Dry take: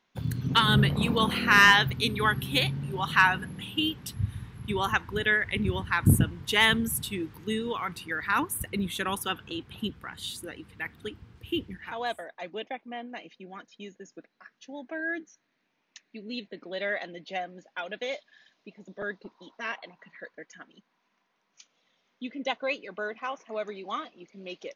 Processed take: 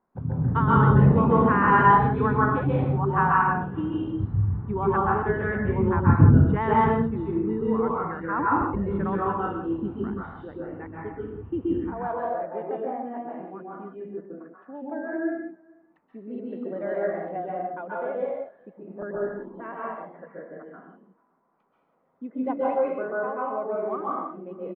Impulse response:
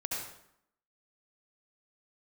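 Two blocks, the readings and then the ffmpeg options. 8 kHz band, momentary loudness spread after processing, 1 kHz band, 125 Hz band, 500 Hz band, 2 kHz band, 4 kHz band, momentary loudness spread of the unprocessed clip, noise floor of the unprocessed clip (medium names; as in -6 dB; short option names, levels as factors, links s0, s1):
under -40 dB, 20 LU, +7.0 dB, +8.0 dB, +8.5 dB, -5.5 dB, under -20 dB, 21 LU, -75 dBFS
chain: -filter_complex "[0:a]lowpass=f=1200:w=0.5412,lowpass=f=1200:w=1.3066,asplit=2[s0][s1];[s1]adelay=443.1,volume=0.0447,highshelf=f=4000:g=-9.97[s2];[s0][s2]amix=inputs=2:normalize=0[s3];[1:a]atrim=start_sample=2205,afade=t=out:st=0.23:d=0.01,atrim=end_sample=10584,asetrate=23373,aresample=44100[s4];[s3][s4]afir=irnorm=-1:irlink=0"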